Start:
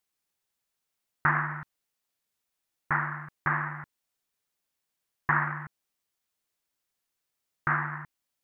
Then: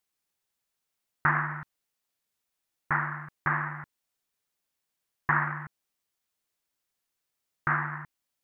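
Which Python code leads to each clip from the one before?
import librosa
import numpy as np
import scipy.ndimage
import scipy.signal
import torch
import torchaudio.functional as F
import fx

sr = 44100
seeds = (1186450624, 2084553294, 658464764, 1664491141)

y = x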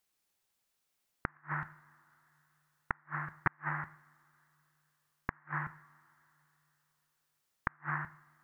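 y = fx.rev_double_slope(x, sr, seeds[0], early_s=0.51, late_s=3.3, knee_db=-27, drr_db=12.0)
y = fx.gate_flip(y, sr, shuts_db=-16.0, range_db=-41)
y = y * 10.0 ** (2.0 / 20.0)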